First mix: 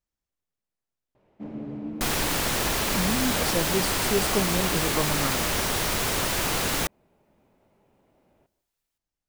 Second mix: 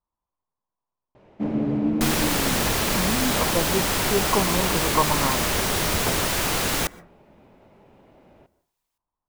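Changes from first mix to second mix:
speech: add low-pass with resonance 1,000 Hz, resonance Q 7.1
first sound +11.5 dB
second sound: send on

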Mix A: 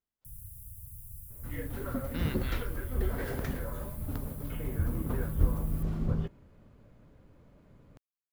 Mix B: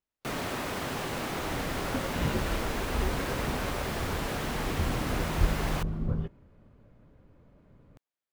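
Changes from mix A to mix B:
first sound: remove inverse Chebyshev band-stop filter 370–3,300 Hz, stop band 70 dB
second sound: add high-shelf EQ 5,600 Hz −11.5 dB

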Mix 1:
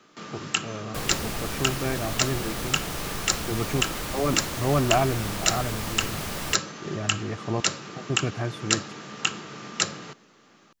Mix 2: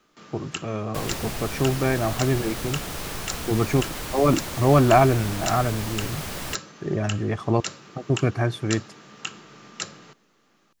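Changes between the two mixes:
speech +6.5 dB
first sound −7.5 dB

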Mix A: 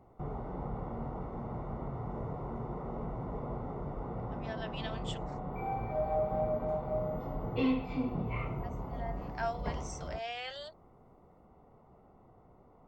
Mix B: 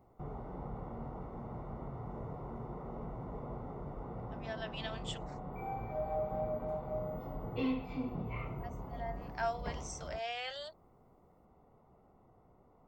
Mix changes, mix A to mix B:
background −4.5 dB
master: add high-shelf EQ 11,000 Hz +7 dB

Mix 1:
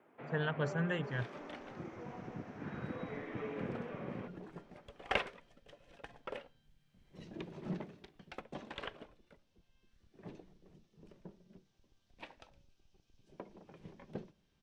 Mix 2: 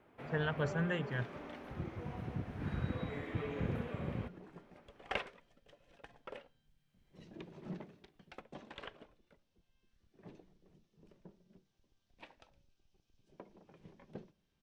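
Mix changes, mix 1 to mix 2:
first sound: remove band-pass filter 200–2,600 Hz
second sound −4.5 dB

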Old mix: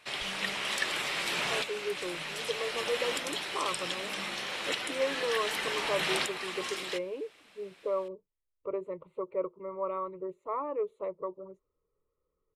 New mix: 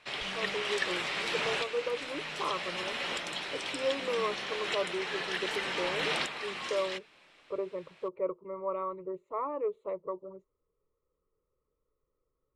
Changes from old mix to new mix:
speech: entry −1.15 s
master: add high-frequency loss of the air 65 metres

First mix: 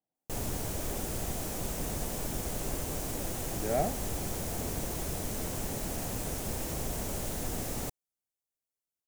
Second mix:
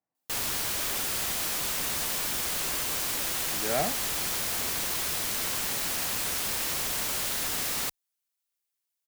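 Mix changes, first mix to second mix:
background: add spectral tilt +2.5 dB per octave
master: add flat-topped bell 2,200 Hz +9 dB 2.6 octaves

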